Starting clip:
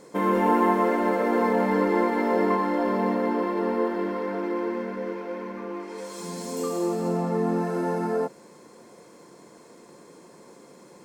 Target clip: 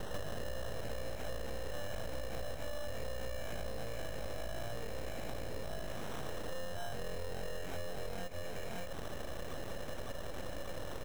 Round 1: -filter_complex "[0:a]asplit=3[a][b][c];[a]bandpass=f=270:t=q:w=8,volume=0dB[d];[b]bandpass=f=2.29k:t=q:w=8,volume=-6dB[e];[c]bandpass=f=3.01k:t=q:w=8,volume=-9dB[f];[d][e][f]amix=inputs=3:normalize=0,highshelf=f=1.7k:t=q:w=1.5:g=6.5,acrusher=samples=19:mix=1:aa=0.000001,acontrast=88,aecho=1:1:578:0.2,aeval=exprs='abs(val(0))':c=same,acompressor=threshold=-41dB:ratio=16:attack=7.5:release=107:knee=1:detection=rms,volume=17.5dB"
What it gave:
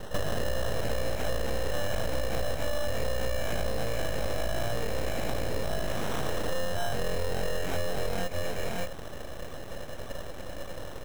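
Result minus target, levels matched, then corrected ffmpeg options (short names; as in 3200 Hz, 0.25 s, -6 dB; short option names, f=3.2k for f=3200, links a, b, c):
compressor: peak gain reduction -11 dB
-filter_complex "[0:a]asplit=3[a][b][c];[a]bandpass=f=270:t=q:w=8,volume=0dB[d];[b]bandpass=f=2.29k:t=q:w=8,volume=-6dB[e];[c]bandpass=f=3.01k:t=q:w=8,volume=-9dB[f];[d][e][f]amix=inputs=3:normalize=0,highshelf=f=1.7k:t=q:w=1.5:g=6.5,acrusher=samples=19:mix=1:aa=0.000001,acontrast=88,aecho=1:1:578:0.2,aeval=exprs='abs(val(0))':c=same,acompressor=threshold=-52.5dB:ratio=16:attack=7.5:release=107:knee=1:detection=rms,volume=17.5dB"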